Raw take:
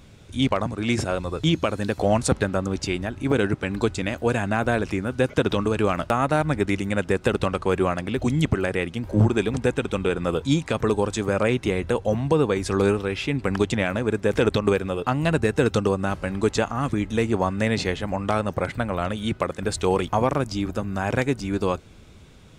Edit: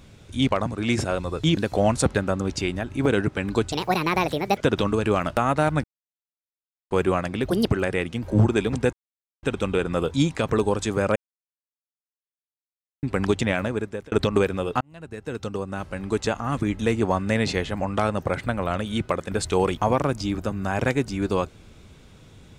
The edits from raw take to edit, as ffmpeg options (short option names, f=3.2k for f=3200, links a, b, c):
-filter_complex "[0:a]asplit=13[a][b][c][d][e][f][g][h][i][j][k][l][m];[a]atrim=end=1.572[n];[b]atrim=start=1.828:end=3.984[o];[c]atrim=start=3.98:end=5.31,asetpts=PTS-STARTPTS,asetrate=68355,aresample=44100[p];[d]atrim=start=5.306:end=6.57,asetpts=PTS-STARTPTS,afade=t=out:st=1.26:d=0.004:c=hsin[q];[e]atrim=start=6.57:end=7.64,asetpts=PTS-STARTPTS,volume=0[r];[f]atrim=start=7.64:end=8.234,asetpts=PTS-STARTPTS,afade=t=in:d=0.004:c=hsin[s];[g]atrim=start=8.23:end=8.49,asetpts=PTS-STARTPTS,asetrate=63504,aresample=44100,atrim=end_sample=7962,asetpts=PTS-STARTPTS[t];[h]atrim=start=8.486:end=9.74,asetpts=PTS-STARTPTS,afade=t=out:st=1.25:d=0.004:c=hsin,apad=pad_dur=0.5[u];[i]atrim=start=9.74:end=11.47,asetpts=PTS-STARTPTS,afade=t=in:d=0.004:c=hsin,afade=t=out:st=1.726:d=0.004:c=hsin[v];[j]atrim=start=11.47:end=13.34,asetpts=PTS-STARTPTS,volume=0[w];[k]atrim=start=13.34:end=14.43,asetpts=PTS-STARTPTS,afade=t=in:d=0.004:c=hsin,afade=t=out:st=0.58:d=0.51[x];[l]atrim=start=14.43:end=15.12,asetpts=PTS-STARTPTS,afade=t=in:d=0.004:c=hsin,afade=t=out:st=0.686:d=0.004:c=hsin[y];[m]atrim=start=15.12,asetpts=PTS-STARTPTS,afade=t=in:d=1.89[z];[n][o]acrossfade=d=0.004:c1=hsin:c2=hsin[aa];[aa][p]acrossfade=d=0.004:c1=hsin:c2=hsin[ab];[q][r][s]concat=n=3:v=0:a=1[ac];[ab][ac]acrossfade=d=0.004:c1=hsin:c2=hsin[ad];[ad][t]acrossfade=d=0.004:c1=hsin:c2=hsin[ae];[u][v][w][x][y][z]concat=n=6:v=0:a=1[af];[ae][af]acrossfade=d=0.004:c1=hsin:c2=hsin"